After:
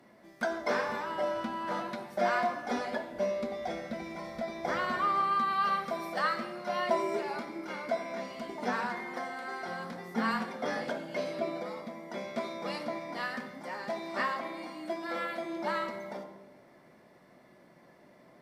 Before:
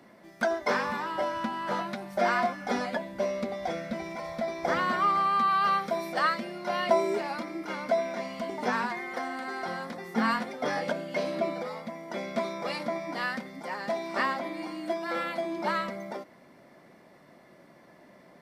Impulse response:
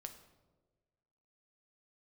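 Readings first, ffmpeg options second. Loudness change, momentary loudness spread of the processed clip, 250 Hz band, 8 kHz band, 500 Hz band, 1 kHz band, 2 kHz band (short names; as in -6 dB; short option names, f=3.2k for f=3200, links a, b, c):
-3.5 dB, 11 LU, -3.5 dB, -4.0 dB, -3.5 dB, -3.5 dB, -3.5 dB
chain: -filter_complex "[1:a]atrim=start_sample=2205,asetrate=35280,aresample=44100[a];[0:a][a]afir=irnorm=-1:irlink=0"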